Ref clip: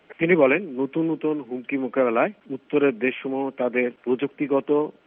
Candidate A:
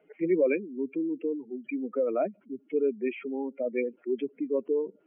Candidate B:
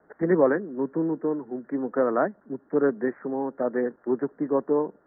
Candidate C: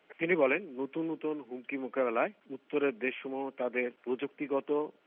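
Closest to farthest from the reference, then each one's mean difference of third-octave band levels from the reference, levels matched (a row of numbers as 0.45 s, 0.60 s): C, B, A; 1.5 dB, 2.5 dB, 8.5 dB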